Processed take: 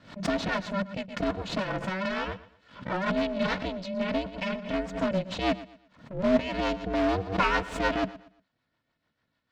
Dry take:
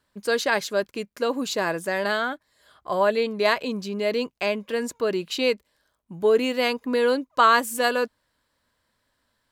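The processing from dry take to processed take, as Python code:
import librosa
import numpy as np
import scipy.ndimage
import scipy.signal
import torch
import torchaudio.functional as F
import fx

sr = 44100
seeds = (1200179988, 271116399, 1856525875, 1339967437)

p1 = fx.lower_of_two(x, sr, delay_ms=2.5)
p2 = fx.rotary(p1, sr, hz=6.7)
p3 = p2 * np.sin(2.0 * np.pi * 190.0 * np.arange(len(p2)) / sr)
p4 = (np.mod(10.0 ** (22.0 / 20.0) * p3 + 1.0, 2.0) - 1.0) / 10.0 ** (22.0 / 20.0)
p5 = p3 + (p4 * 10.0 ** (-9.0 / 20.0))
p6 = fx.air_absorb(p5, sr, metres=180.0)
p7 = p6 + fx.echo_feedback(p6, sr, ms=118, feedback_pct=31, wet_db=-17, dry=0)
p8 = fx.pre_swell(p7, sr, db_per_s=120.0)
y = p8 * 10.0 ** (1.0 / 20.0)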